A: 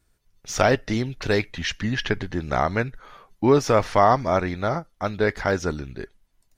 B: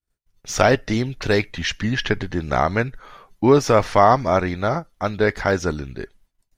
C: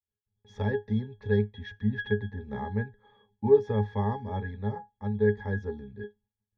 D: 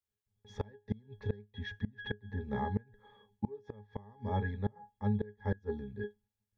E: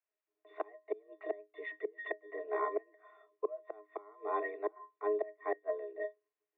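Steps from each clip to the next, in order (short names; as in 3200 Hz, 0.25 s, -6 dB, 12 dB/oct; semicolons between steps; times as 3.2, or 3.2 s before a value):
expander -54 dBFS; gain +3 dB
octave resonator G#, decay 0.17 s
flipped gate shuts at -21 dBFS, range -27 dB
mistuned SSB +210 Hz 170–2500 Hz; gain +1.5 dB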